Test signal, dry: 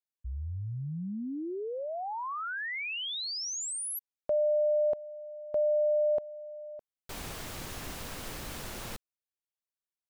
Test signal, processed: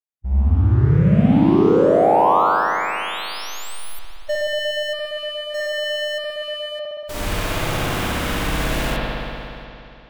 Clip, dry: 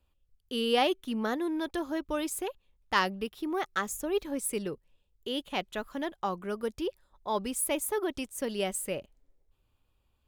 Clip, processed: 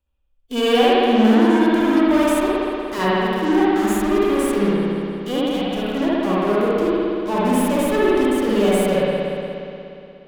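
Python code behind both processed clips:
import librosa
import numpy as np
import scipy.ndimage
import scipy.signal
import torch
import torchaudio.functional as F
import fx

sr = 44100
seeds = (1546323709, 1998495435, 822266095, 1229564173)

p1 = fx.tracing_dist(x, sr, depth_ms=0.021)
p2 = fx.fuzz(p1, sr, gain_db=44.0, gate_db=-50.0)
p3 = p1 + (p2 * librosa.db_to_amplitude(-6.0))
p4 = fx.peak_eq(p3, sr, hz=4100.0, db=-2.0, octaves=0.25)
p5 = fx.hpss(p4, sr, part='percussive', gain_db=-15)
p6 = p5 + fx.echo_feedback(p5, sr, ms=171, feedback_pct=55, wet_db=-20.0, dry=0)
p7 = fx.rev_spring(p6, sr, rt60_s=2.8, pass_ms=(59,), chirp_ms=25, drr_db=-8.0)
y = p7 * librosa.db_to_amplitude(-3.5)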